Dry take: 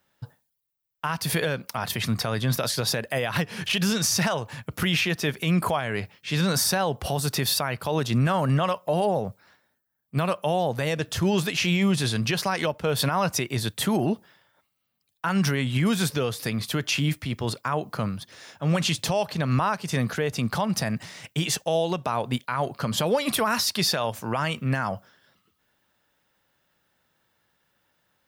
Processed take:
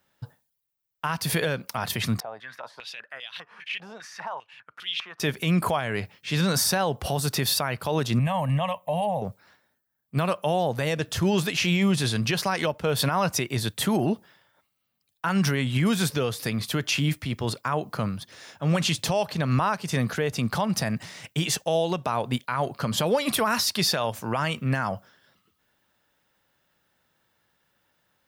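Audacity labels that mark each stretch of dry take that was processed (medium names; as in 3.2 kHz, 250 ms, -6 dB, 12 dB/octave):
2.200000	5.200000	step-sequenced band-pass 5 Hz 750–3400 Hz
8.190000	9.220000	static phaser centre 1.4 kHz, stages 6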